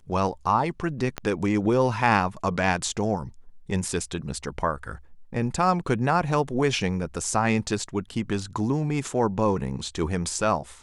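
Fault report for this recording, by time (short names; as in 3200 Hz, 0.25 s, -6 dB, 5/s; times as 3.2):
1.18 pop -14 dBFS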